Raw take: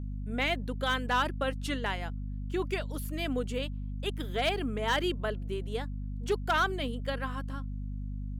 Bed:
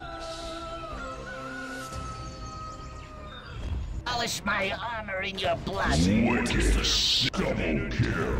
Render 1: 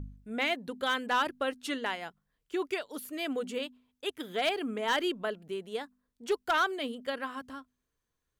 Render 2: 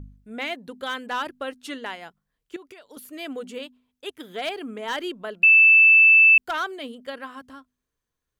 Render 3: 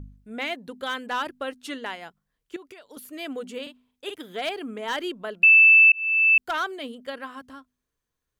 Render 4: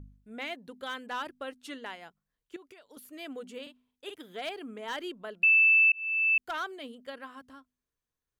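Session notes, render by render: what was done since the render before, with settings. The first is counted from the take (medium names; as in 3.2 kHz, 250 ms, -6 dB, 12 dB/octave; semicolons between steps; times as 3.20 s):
de-hum 50 Hz, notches 5
2.56–2.97 s: compression 12:1, threshold -41 dBFS; 5.43–6.38 s: bleep 2.64 kHz -10 dBFS
3.62–4.16 s: doubling 45 ms -5.5 dB; 5.92–6.51 s: fade in
trim -7.5 dB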